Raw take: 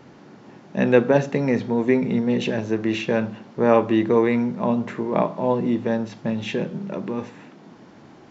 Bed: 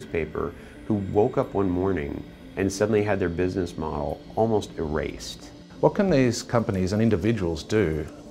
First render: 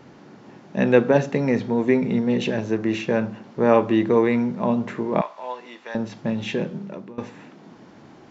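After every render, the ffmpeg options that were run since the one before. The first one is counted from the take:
-filter_complex "[0:a]asettb=1/sr,asplit=3[a][b][c];[a]atrim=end=2.774[d];[b]atrim=start=2.77:end=3.44,asetpts=PTS-STARTPTS,afade=t=in:d=0.004:c=qsin,afade=t=out:st=0.666:d=0.004:c=qsin,equalizer=f=3.4k:w=1.5:g=-4[e];[c]atrim=start=3.436[f];[d][e]acrossfade=d=0.004:c1=hsin:c2=qsin[g];[g][f]acrossfade=d=0.004:c1=qsin:c2=hsin,asettb=1/sr,asplit=3[h][i][j];[h]atrim=end=5.214[k];[i]atrim=start=5.21:end=5.95,asetpts=PTS-STARTPTS,afade=t=in:d=0.004:c=qsin,afade=t=out:st=0.736:d=0.004:c=qsin,highpass=1.1k[l];[j]atrim=start=5.946[m];[k][l]acrossfade=d=0.004:c1=hsin:c2=qsin[n];[n][m]acrossfade=d=0.004:c1=qsin:c2=hsin,asplit=2[o][p];[o]atrim=end=7.18,asetpts=PTS-STARTPTS,afade=t=out:st=6.66:d=0.52:silence=0.125893[q];[p]atrim=start=7.18,asetpts=PTS-STARTPTS,afade=t=in:d=0.004:c=hsin:silence=0.125893[r];[q][r]concat=n=2:v=0:a=1"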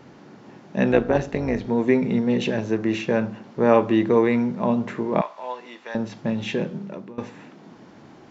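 -filter_complex "[0:a]asplit=3[a][b][c];[a]afade=t=out:st=0.91:d=0.02[d];[b]tremolo=f=190:d=0.71,afade=t=in:st=0.91:d=0.02,afade=t=out:st=1.66:d=0.02[e];[c]afade=t=in:st=1.66:d=0.02[f];[d][e][f]amix=inputs=3:normalize=0"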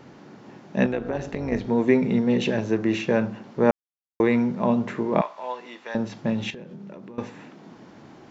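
-filter_complex "[0:a]asettb=1/sr,asplit=3[a][b][c];[a]atrim=end=0.864[d];[b]atrim=start=0.86:end=1.52,asetpts=PTS-STARTPTS,afade=t=in:d=0.004:c=qsin,afade=t=out:st=0.656:d=0.004:c=qsin,acompressor=threshold=-26dB:ratio=2.5:attack=3.2:release=140:knee=1:detection=peak[e];[c]atrim=start=1.516[f];[d][e]acrossfade=d=0.004:c1=hsin:c2=qsin[g];[g][f]acrossfade=d=0.004:c1=qsin:c2=hsin,asettb=1/sr,asplit=3[h][i][j];[h]atrim=end=6.504[k];[i]atrim=start=6.5:end=7.17,asetpts=PTS-STARTPTS,afade=t=in:d=0.004:c=qsin,afade=t=out:st=0.666:d=0.004:c=qsin,acompressor=threshold=-36dB:ratio=10:attack=3.2:release=140:knee=1:detection=peak[l];[j]atrim=start=7.166[m];[k][l]acrossfade=d=0.004:c1=hsin:c2=qsin[n];[n][m]acrossfade=d=0.004:c1=qsin:c2=hsin,asplit=3[o][p][q];[o]atrim=end=3.71,asetpts=PTS-STARTPTS,afade=t=out:st=3.706:d=0.004:c=hsin[r];[p]atrim=start=3.71:end=4.2,asetpts=PTS-STARTPTS,volume=0[s];[q]atrim=start=4.2,asetpts=PTS-STARTPTS,afade=t=in:d=0.004:c=hsin[t];[r][s][t]concat=n=3:v=0:a=1"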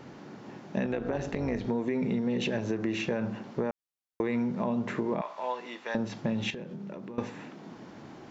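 -af "alimiter=limit=-15.5dB:level=0:latency=1:release=96,acompressor=threshold=-26dB:ratio=6"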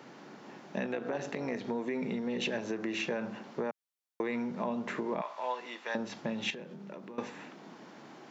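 -af "highpass=f=140:w=0.5412,highpass=f=140:w=1.3066,lowshelf=f=390:g=-8"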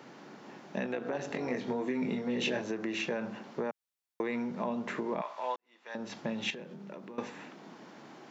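-filter_complex "[0:a]asettb=1/sr,asplit=3[a][b][c];[a]atrim=end=1.284[d];[b]atrim=start=1.28:end=2.62,asetpts=PTS-STARTPTS,afade=t=in:d=0.004:c=qsin,afade=t=out:st=1.336:d=0.004:c=qsin,asplit=2[e][f];[f]adelay=24,volume=-3.5dB[g];[e][g]amix=inputs=2:normalize=0,atrim=end_sample=59094[h];[c]atrim=start=2.616[i];[d][h]acrossfade=d=0.004:c1=hsin:c2=qsin[j];[j][i]acrossfade=d=0.004:c1=qsin:c2=hsin,asplit=2[k][l];[k]atrim=end=5.56,asetpts=PTS-STARTPTS,afade=t=out:st=5.556:d=0.004:c=hsin[m];[l]atrim=start=5.56,asetpts=PTS-STARTPTS,afade=t=in:d=0.55:c=qua[n];[m][n]concat=n=2:v=0:a=1"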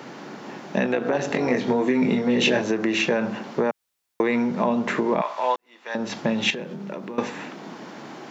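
-af "volume=12dB"

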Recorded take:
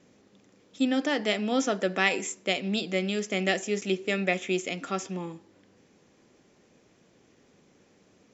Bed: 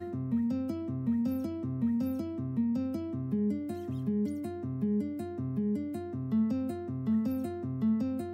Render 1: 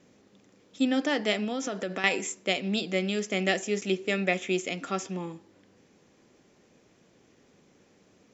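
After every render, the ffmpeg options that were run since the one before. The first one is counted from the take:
-filter_complex "[0:a]asettb=1/sr,asplit=3[a][b][c];[a]atrim=end=1.444[d];[b]atrim=start=1.44:end=2.04,asetpts=PTS-STARTPTS,afade=t=in:d=0.004:c=qsin,afade=t=out:st=0.596:d=0.004:c=qsin,acompressor=threshold=-27dB:ratio=6:attack=3.2:release=140:knee=1:detection=peak[e];[c]atrim=start=2.036[f];[d][e]acrossfade=d=0.004:c1=hsin:c2=qsin[g];[g][f]acrossfade=d=0.004:c1=qsin:c2=hsin"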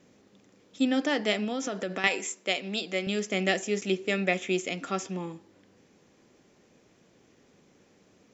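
-filter_complex "[0:a]asettb=1/sr,asplit=3[a][b][c];[a]atrim=end=2.074[d];[b]atrim=start=2.07:end=3.07,asetpts=PTS-STARTPTS,afade=t=in:d=0.004:c=qsin,afade=t=out:st=0.996:d=0.004:c=qsin,highpass=f=400:p=1[e];[c]atrim=start=3.066[f];[d][e]acrossfade=d=0.004:c1=hsin:c2=qsin[g];[g][f]acrossfade=d=0.004:c1=qsin:c2=hsin"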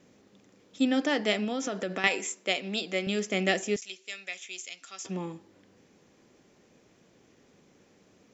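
-filter_complex "[0:a]asettb=1/sr,asplit=3[a][b][c];[a]atrim=end=3.764[d];[b]atrim=start=3.76:end=5.05,asetpts=PTS-STARTPTS,afade=t=in:d=0.004:c=qsin,afade=t=out:st=1.286:d=0.004:c=qsin,bandpass=f=6.1k:t=q:w=1[e];[c]atrim=start=5.046[f];[d][e]acrossfade=d=0.004:c1=hsin:c2=qsin[g];[g][f]acrossfade=d=0.004:c1=qsin:c2=hsin"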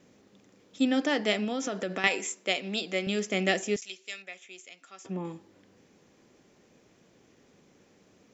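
-filter_complex "[0:a]asettb=1/sr,asplit=3[a][b][c];[a]atrim=end=4.224[d];[b]atrim=start=4.22:end=5.25,asetpts=PTS-STARTPTS,afade=t=in:d=0.004:c=qsin,afade=t=out:st=1.026:d=0.004:c=qsin,equalizer=f=5.4k:w=0.48:g=-11.5[e];[c]atrim=start=5.246[f];[d][e]acrossfade=d=0.004:c1=hsin:c2=qsin[g];[g][f]acrossfade=d=0.004:c1=qsin:c2=hsin"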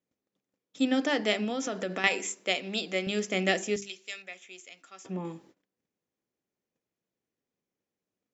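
-af "bandreject=f=50:t=h:w=6,bandreject=f=100:t=h:w=6,bandreject=f=150:t=h:w=6,bandreject=f=200:t=h:w=6,bandreject=f=250:t=h:w=6,bandreject=f=300:t=h:w=6,bandreject=f=350:t=h:w=6,bandreject=f=400:t=h:w=6,agate=range=-28dB:threshold=-56dB:ratio=16:detection=peak"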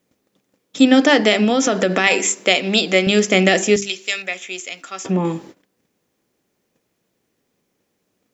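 -filter_complex "[0:a]asplit=2[a][b];[b]acompressor=threshold=-37dB:ratio=6,volume=-1dB[c];[a][c]amix=inputs=2:normalize=0,alimiter=level_in=13dB:limit=-1dB:release=50:level=0:latency=1"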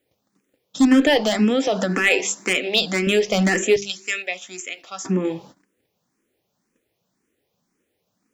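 -filter_complex "[0:a]asoftclip=type=hard:threshold=-7.5dB,asplit=2[a][b];[b]afreqshift=1.9[c];[a][c]amix=inputs=2:normalize=1"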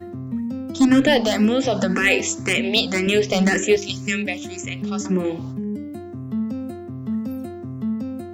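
-filter_complex "[1:a]volume=3.5dB[a];[0:a][a]amix=inputs=2:normalize=0"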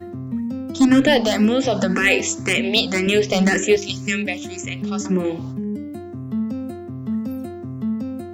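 -af "volume=1dB"

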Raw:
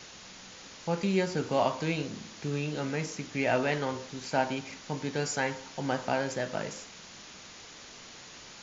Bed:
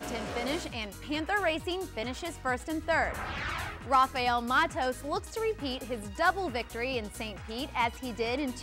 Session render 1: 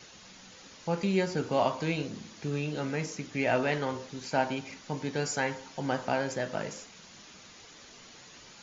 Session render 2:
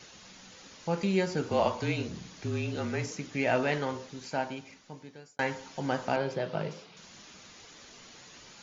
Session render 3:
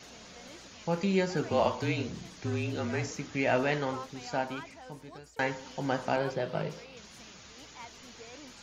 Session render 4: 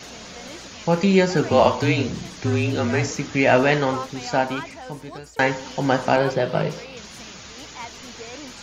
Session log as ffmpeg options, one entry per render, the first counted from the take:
-af "afftdn=nr=6:nf=-49"
-filter_complex "[0:a]asettb=1/sr,asplit=3[a][b][c];[a]atrim=end=1.494[d];[b]atrim=start=1.49:end=3.11,asetpts=PTS-STARTPTS,afade=t=in:d=0.004:c=qsin,afade=t=out:st=1.616:d=0.004:c=qsin,afreqshift=-34[e];[c]atrim=start=3.106[f];[d][e]acrossfade=d=0.004:c1=hsin:c2=qsin[g];[g][f]acrossfade=d=0.004:c1=qsin:c2=hsin,asettb=1/sr,asplit=3[h][i][j];[h]atrim=end=6.164[k];[i]atrim=start=6.16:end=6.97,asetpts=PTS-STARTPTS,afade=t=in:d=0.004:c=qsin,afade=t=out:st=0.806:d=0.004:c=qsin,highpass=110,equalizer=f=160:t=q:w=4:g=10,equalizer=f=240:t=q:w=4:g=-8,equalizer=f=400:t=q:w=4:g=5,equalizer=f=1.8k:t=q:w=4:g=-7,lowpass=f=4.6k:w=0.5412,lowpass=f=4.6k:w=1.3066[l];[j]atrim=start=6.966[m];[k][l]acrossfade=d=0.004:c1=hsin:c2=qsin[n];[n][m]acrossfade=d=0.004:c1=qsin:c2=hsin,asplit=2[o][p];[o]atrim=end=5.39,asetpts=PTS-STARTPTS,afade=t=out:st=3.77:d=1.62[q];[p]atrim=start=5.39,asetpts=PTS-STARTPTS,afade=t=in:d=0.004:c=hsin[r];[q][r]concat=n=2:v=0:a=1"
-filter_complex "[1:a]volume=-19dB[a];[0:a][a]amix=inputs=2:normalize=0"
-af "volume=11dB"

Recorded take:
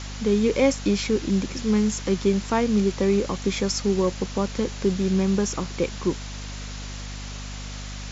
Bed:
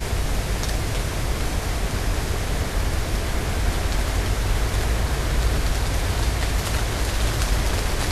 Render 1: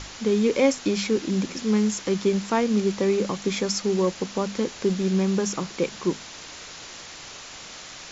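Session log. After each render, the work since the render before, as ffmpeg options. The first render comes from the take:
-af "bandreject=f=50:t=h:w=6,bandreject=f=100:t=h:w=6,bandreject=f=150:t=h:w=6,bandreject=f=200:t=h:w=6,bandreject=f=250:t=h:w=6"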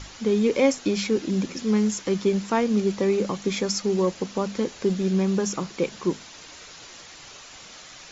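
-af "afftdn=nr=6:nf=-41"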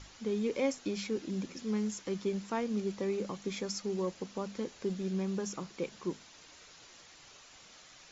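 -af "volume=-11.5dB"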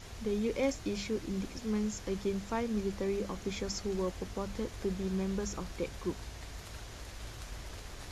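-filter_complex "[1:a]volume=-23dB[a];[0:a][a]amix=inputs=2:normalize=0"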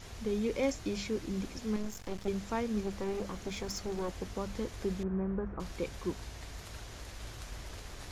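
-filter_complex "[0:a]asettb=1/sr,asplit=3[a][b][c];[a]atrim=end=1.764[d];[b]atrim=start=1.76:end=2.28,asetpts=PTS-STARTPTS,afade=t=in:d=0.004:c=qsin,afade=t=out:st=0.516:d=0.004:c=qsin,aeval=exprs='max(val(0),0)':c=same[e];[c]atrim=start=2.276[f];[d][e]acrossfade=d=0.004:c1=hsin:c2=qsin[g];[g][f]acrossfade=d=0.004:c1=qsin:c2=hsin,asettb=1/sr,asplit=3[h][i][j];[h]atrim=end=2.814[k];[i]atrim=start=2.81:end=4.09,asetpts=PTS-STARTPTS,afade=t=in:d=0.004:c=qsin,afade=t=out:st=1.276:d=0.004:c=qsin,aeval=exprs='clip(val(0),-1,0.0141)':c=same[l];[j]atrim=start=4.086[m];[k][l]acrossfade=d=0.004:c1=hsin:c2=qsin[n];[n][m]acrossfade=d=0.004:c1=qsin:c2=hsin,asettb=1/sr,asplit=3[o][p][q];[o]atrim=end=5.034[r];[p]atrim=start=5.03:end=5.6,asetpts=PTS-STARTPTS,afade=t=in:d=0.004:c=qsin,afade=t=out:st=0.566:d=0.004:c=qsin,lowpass=f=1.6k:w=0.5412,lowpass=f=1.6k:w=1.3066[s];[q]atrim=start=5.596[t];[r][s]acrossfade=d=0.004:c1=hsin:c2=qsin[u];[u][t]acrossfade=d=0.004:c1=qsin:c2=hsin"

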